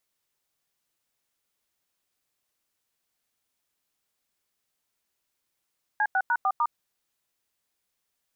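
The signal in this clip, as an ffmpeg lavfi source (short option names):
-f lavfi -i "aevalsrc='0.0668*clip(min(mod(t,0.15),0.058-mod(t,0.15))/0.002,0,1)*(eq(floor(t/0.15),0)*(sin(2*PI*852*mod(t,0.15))+sin(2*PI*1633*mod(t,0.15)))+eq(floor(t/0.15),1)*(sin(2*PI*770*mod(t,0.15))+sin(2*PI*1477*mod(t,0.15)))+eq(floor(t/0.15),2)*(sin(2*PI*941*mod(t,0.15))+sin(2*PI*1477*mod(t,0.15)))+eq(floor(t/0.15),3)*(sin(2*PI*770*mod(t,0.15))+sin(2*PI*1209*mod(t,0.15)))+eq(floor(t/0.15),4)*(sin(2*PI*941*mod(t,0.15))+sin(2*PI*1209*mod(t,0.15))))':d=0.75:s=44100"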